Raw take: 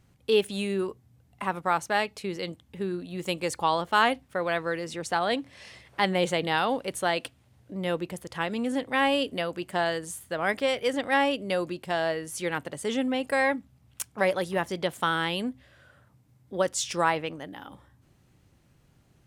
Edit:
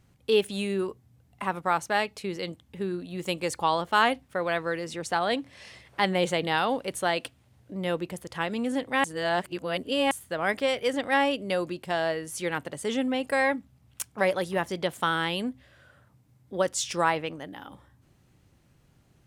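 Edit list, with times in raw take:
0:09.04–0:10.11: reverse

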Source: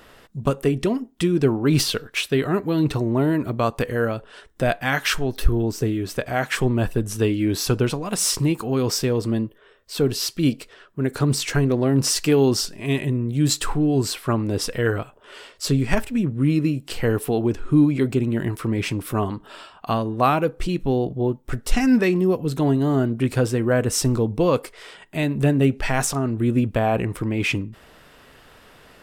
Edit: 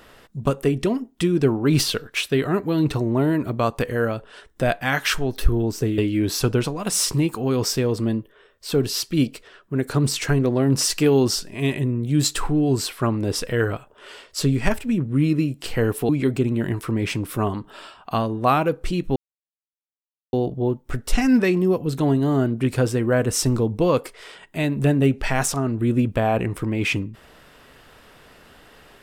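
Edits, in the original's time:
0:05.98–0:07.24: remove
0:17.35–0:17.85: remove
0:20.92: splice in silence 1.17 s

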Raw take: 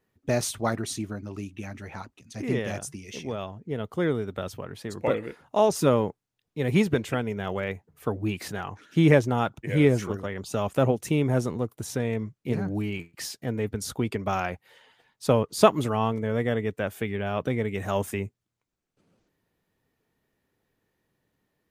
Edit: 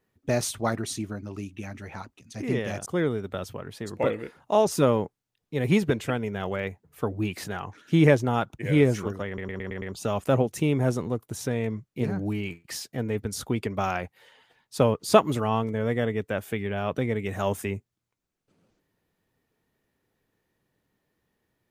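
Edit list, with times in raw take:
0:02.86–0:03.90: remove
0:10.31: stutter 0.11 s, 6 plays

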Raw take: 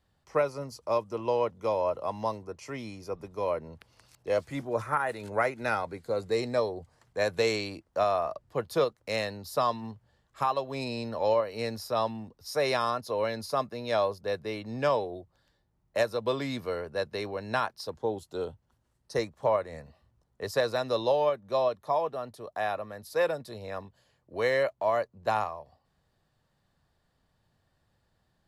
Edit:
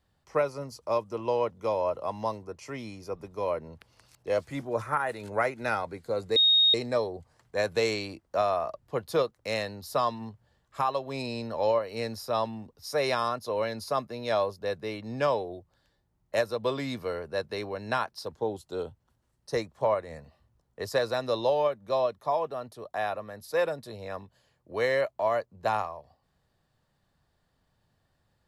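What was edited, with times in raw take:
0:06.36: insert tone 3,730 Hz −17.5 dBFS 0.38 s

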